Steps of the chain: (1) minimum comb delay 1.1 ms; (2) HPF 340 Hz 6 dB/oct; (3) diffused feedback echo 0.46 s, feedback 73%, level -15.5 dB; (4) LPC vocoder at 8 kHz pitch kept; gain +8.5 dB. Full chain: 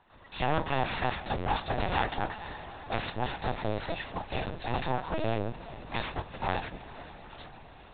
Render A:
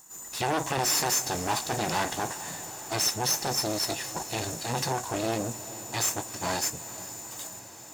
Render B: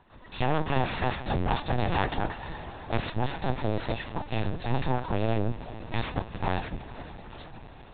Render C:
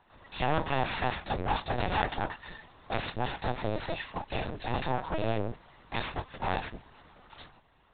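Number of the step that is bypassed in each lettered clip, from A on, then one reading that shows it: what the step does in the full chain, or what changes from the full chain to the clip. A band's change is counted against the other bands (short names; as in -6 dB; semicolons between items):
4, 4 kHz band +8.0 dB; 2, crest factor change -2.5 dB; 3, crest factor change +2.5 dB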